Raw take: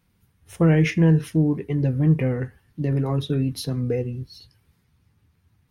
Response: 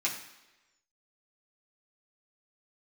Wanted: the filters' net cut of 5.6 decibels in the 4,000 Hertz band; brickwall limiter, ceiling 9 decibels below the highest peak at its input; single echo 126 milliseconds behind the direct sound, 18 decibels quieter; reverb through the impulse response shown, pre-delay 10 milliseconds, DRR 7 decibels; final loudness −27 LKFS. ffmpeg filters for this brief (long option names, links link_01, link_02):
-filter_complex "[0:a]equalizer=frequency=4000:width_type=o:gain=-7,alimiter=limit=-17.5dB:level=0:latency=1,aecho=1:1:126:0.126,asplit=2[link_01][link_02];[1:a]atrim=start_sample=2205,adelay=10[link_03];[link_02][link_03]afir=irnorm=-1:irlink=0,volume=-13.5dB[link_04];[link_01][link_04]amix=inputs=2:normalize=0,volume=-1dB"